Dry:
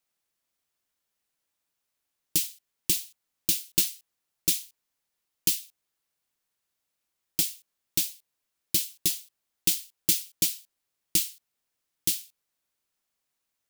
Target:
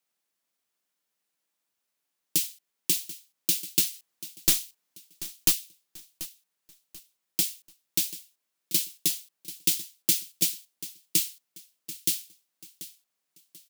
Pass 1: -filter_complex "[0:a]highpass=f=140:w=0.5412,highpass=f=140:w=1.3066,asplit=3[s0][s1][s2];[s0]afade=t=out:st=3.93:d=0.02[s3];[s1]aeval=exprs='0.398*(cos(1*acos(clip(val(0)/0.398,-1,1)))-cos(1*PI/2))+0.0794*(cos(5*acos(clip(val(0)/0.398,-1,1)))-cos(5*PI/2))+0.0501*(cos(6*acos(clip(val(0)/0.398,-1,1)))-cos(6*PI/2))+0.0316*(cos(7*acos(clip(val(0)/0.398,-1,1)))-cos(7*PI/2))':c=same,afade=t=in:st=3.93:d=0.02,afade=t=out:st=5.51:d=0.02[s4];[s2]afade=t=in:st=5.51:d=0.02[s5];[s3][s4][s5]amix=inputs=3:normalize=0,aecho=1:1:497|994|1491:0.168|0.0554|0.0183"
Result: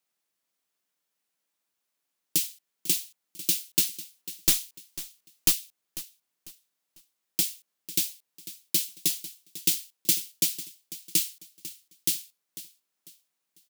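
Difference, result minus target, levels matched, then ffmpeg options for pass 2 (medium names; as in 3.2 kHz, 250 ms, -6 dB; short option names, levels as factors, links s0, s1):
echo 240 ms early
-filter_complex "[0:a]highpass=f=140:w=0.5412,highpass=f=140:w=1.3066,asplit=3[s0][s1][s2];[s0]afade=t=out:st=3.93:d=0.02[s3];[s1]aeval=exprs='0.398*(cos(1*acos(clip(val(0)/0.398,-1,1)))-cos(1*PI/2))+0.0794*(cos(5*acos(clip(val(0)/0.398,-1,1)))-cos(5*PI/2))+0.0501*(cos(6*acos(clip(val(0)/0.398,-1,1)))-cos(6*PI/2))+0.0316*(cos(7*acos(clip(val(0)/0.398,-1,1)))-cos(7*PI/2))':c=same,afade=t=in:st=3.93:d=0.02,afade=t=out:st=5.51:d=0.02[s4];[s2]afade=t=in:st=5.51:d=0.02[s5];[s3][s4][s5]amix=inputs=3:normalize=0,aecho=1:1:737|1474|2211:0.168|0.0554|0.0183"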